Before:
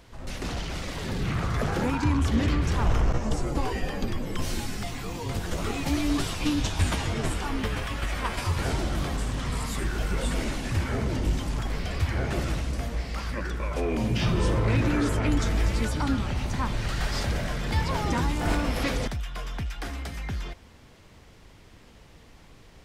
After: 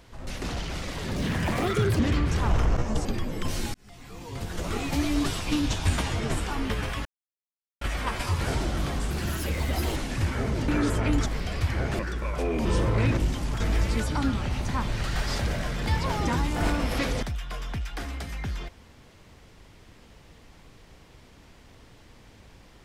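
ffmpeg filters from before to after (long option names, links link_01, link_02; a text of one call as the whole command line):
ffmpeg -i in.wav -filter_complex "[0:a]asplit=14[link_01][link_02][link_03][link_04][link_05][link_06][link_07][link_08][link_09][link_10][link_11][link_12][link_13][link_14];[link_01]atrim=end=1.164[link_15];[link_02]atrim=start=1.16:end=2.35,asetpts=PTS-STARTPTS,asetrate=63063,aresample=44100[link_16];[link_03]atrim=start=2.346:end=3.412[link_17];[link_04]atrim=start=3.988:end=4.68,asetpts=PTS-STARTPTS,afade=type=out:start_time=0.688:duration=0.004:curve=hsin[link_18];[link_05]atrim=start=4.68:end=7.99,asetpts=PTS-STARTPTS,afade=type=in:duration=1.04,afade=type=out:start_time=3.306:duration=0.004:curve=hsin,apad=pad_dur=0.76[link_19];[link_06]atrim=start=7.99:end=9.284,asetpts=PTS-STARTPTS,afade=type=in:duration=0.004:curve=hsin[link_20];[link_07]atrim=start=9.28:end=10.5,asetpts=PTS-STARTPTS,asetrate=62622,aresample=44100[link_21];[link_08]atrim=start=10.496:end=11.222[link_22];[link_09]atrim=start=14.868:end=15.452[link_23];[link_10]atrim=start=11.648:end=12.382[link_24];[link_11]atrim=start=13.368:end=14.032[link_25];[link_12]atrim=start=14.348:end=14.872[link_26];[link_13]atrim=start=11.218:end=11.652[link_27];[link_14]atrim=start=15.448[link_28];[link_15][link_16]acrossfade=duration=0.004:curve1=hsin:curve2=hsin[link_29];[link_29][link_17]acrossfade=duration=0.004:curve1=hsin:curve2=hsin[link_30];[link_18][link_19][link_20]concat=n=3:v=0:a=1[link_31];[link_30][link_31]acrossfade=duration=0.004:curve1=hsin:curve2=hsin[link_32];[link_32][link_21]acrossfade=duration=0.004:curve1=hsin:curve2=hsin[link_33];[link_33][link_22]acrossfade=duration=0.004:curve1=hsin:curve2=hsin[link_34];[link_34][link_23]acrossfade=duration=0.004:curve1=hsin:curve2=hsin[link_35];[link_35][link_24]acrossfade=duration=0.004:curve1=hsin:curve2=hsin[link_36];[link_36][link_25]acrossfade=duration=0.004:curve1=hsin:curve2=hsin[link_37];[link_37][link_26]acrossfade=duration=0.004:curve1=hsin:curve2=hsin[link_38];[link_38][link_27]acrossfade=duration=0.004:curve1=hsin:curve2=hsin[link_39];[link_39][link_28]acrossfade=duration=0.004:curve1=hsin:curve2=hsin" out.wav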